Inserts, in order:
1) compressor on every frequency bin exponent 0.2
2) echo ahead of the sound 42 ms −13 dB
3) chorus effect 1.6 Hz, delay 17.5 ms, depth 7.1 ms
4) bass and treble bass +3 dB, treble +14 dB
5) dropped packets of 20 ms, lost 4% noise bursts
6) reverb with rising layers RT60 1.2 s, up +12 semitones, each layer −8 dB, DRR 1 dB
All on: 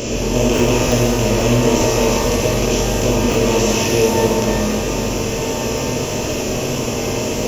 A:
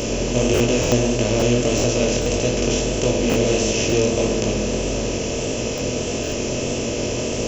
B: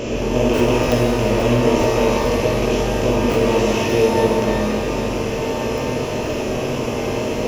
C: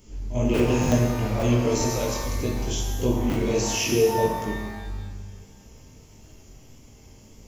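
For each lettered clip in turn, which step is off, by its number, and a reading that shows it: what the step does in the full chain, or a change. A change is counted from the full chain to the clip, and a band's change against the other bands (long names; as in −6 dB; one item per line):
6, 1 kHz band −5.5 dB
4, 8 kHz band −9.5 dB
1, 125 Hz band +4.0 dB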